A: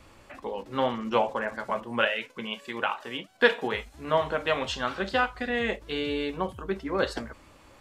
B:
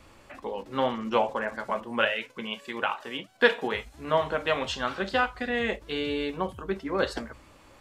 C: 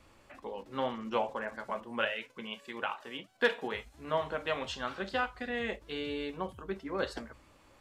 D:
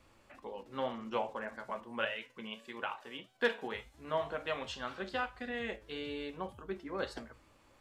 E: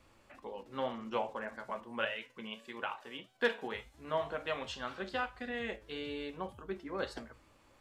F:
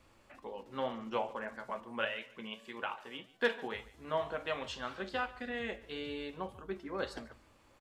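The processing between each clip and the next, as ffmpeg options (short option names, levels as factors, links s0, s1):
-af "bandreject=f=60:t=h:w=6,bandreject=f=120:t=h:w=6"
-af "asoftclip=type=hard:threshold=0.398,volume=0.447"
-af "flanger=delay=7.6:depth=1.9:regen=86:speed=1.8:shape=triangular,volume=1.12"
-af anull
-af "aecho=1:1:144|288:0.1|0.029"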